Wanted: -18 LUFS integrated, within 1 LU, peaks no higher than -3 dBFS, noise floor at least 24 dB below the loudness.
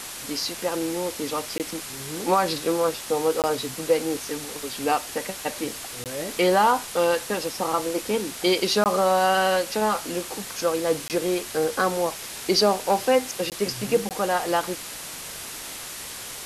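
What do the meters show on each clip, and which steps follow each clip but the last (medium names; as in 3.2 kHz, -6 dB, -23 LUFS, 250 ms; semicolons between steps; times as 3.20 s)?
dropouts 7; longest dropout 18 ms; noise floor -37 dBFS; noise floor target -49 dBFS; loudness -25.0 LUFS; peak level -8.5 dBFS; loudness target -18.0 LUFS
-> interpolate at 1.58/3.42/6.04/8.84/11.08/13.50/14.09 s, 18 ms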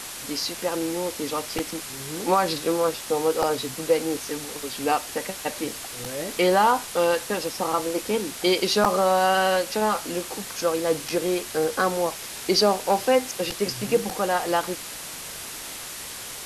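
dropouts 0; noise floor -37 dBFS; noise floor target -49 dBFS
-> noise reduction 12 dB, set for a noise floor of -37 dBFS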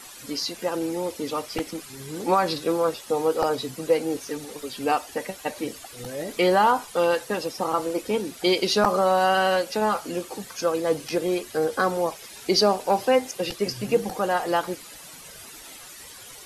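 noise floor -44 dBFS; noise floor target -49 dBFS
-> noise reduction 6 dB, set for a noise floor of -44 dBFS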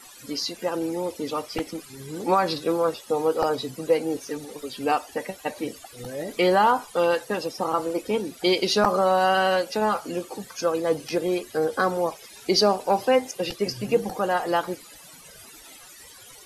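noise floor -47 dBFS; noise floor target -49 dBFS
-> noise reduction 6 dB, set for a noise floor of -47 dBFS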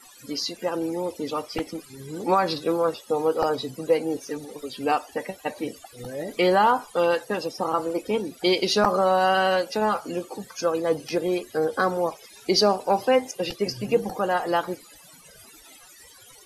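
noise floor -50 dBFS; loudness -25.0 LUFS; peak level -7.0 dBFS; loudness target -18.0 LUFS
-> trim +7 dB; peak limiter -3 dBFS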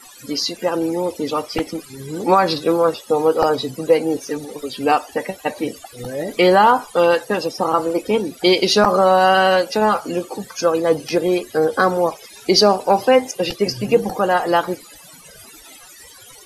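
loudness -18.0 LUFS; peak level -3.0 dBFS; noise floor -43 dBFS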